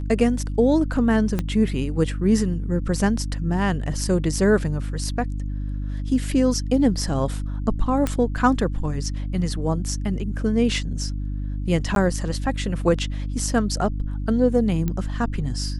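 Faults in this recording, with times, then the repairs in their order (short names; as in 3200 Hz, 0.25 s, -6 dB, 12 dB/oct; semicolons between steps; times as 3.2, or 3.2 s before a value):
hum 50 Hz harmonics 6 -27 dBFS
1.39 pop -11 dBFS
8.07 pop -10 dBFS
11.95–11.96 gap 12 ms
14.88 pop -13 dBFS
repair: de-click; de-hum 50 Hz, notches 6; interpolate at 11.95, 12 ms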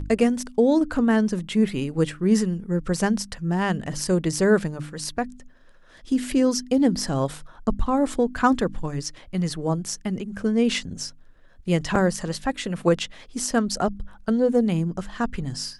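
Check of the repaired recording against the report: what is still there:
1.39 pop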